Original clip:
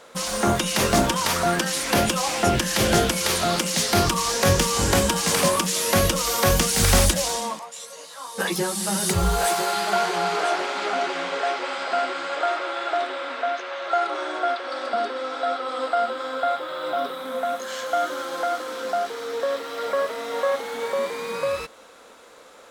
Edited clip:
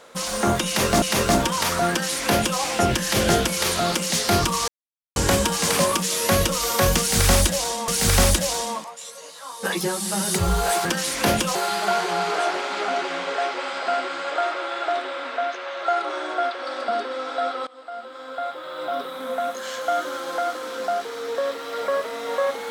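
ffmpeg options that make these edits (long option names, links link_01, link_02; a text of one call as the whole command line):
ffmpeg -i in.wav -filter_complex "[0:a]asplit=8[link_01][link_02][link_03][link_04][link_05][link_06][link_07][link_08];[link_01]atrim=end=1.022[link_09];[link_02]atrim=start=0.658:end=4.32,asetpts=PTS-STARTPTS,afade=type=out:start_time=3.658:duration=0.004:curve=hsin[link_10];[link_03]atrim=start=4.32:end=4.8,asetpts=PTS-STARTPTS,volume=0[link_11];[link_04]atrim=start=4.8:end=7.522,asetpts=PTS-STARTPTS,afade=type=in:duration=0.004:curve=hsin[link_12];[link_05]atrim=start=6.628:end=9.602[link_13];[link_06]atrim=start=1.538:end=2.242[link_14];[link_07]atrim=start=9.598:end=15.72,asetpts=PTS-STARTPTS,afade=type=out:start_time=6.118:duration=0.004:curve=hsin:silence=0.0749894[link_15];[link_08]atrim=start=15.72,asetpts=PTS-STARTPTS,afade=type=in:duration=1.56:silence=0.0749894[link_16];[link_10][link_11][link_12]concat=n=3:v=0:a=1[link_17];[link_09][link_17]acrossfade=duration=0.004:curve1=hsin:curve2=hsin[link_18];[link_18][link_13]acrossfade=duration=0.004:curve1=hsin:curve2=hsin[link_19];[link_19][link_14]acrossfade=duration=0.004:curve1=hsin:curve2=hsin[link_20];[link_15][link_16]concat=n=2:v=0:a=1[link_21];[link_20][link_21]acrossfade=duration=0.004:curve1=hsin:curve2=hsin" out.wav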